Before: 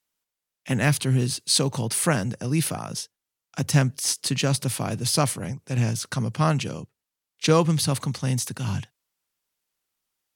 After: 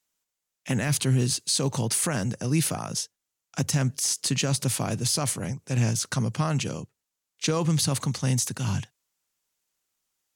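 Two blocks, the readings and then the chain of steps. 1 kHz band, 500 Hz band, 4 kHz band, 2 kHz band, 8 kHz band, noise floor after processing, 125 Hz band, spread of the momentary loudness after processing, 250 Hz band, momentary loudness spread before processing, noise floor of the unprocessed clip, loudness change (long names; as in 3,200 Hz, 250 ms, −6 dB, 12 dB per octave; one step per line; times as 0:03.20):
−5.0 dB, −5.0 dB, −2.0 dB, −4.0 dB, +1.0 dB, −85 dBFS, −2.0 dB, 8 LU, −2.0 dB, 10 LU, below −85 dBFS, −1.5 dB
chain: parametric band 6,900 Hz +6 dB 0.55 octaves
brickwall limiter −14.5 dBFS, peak gain reduction 9.5 dB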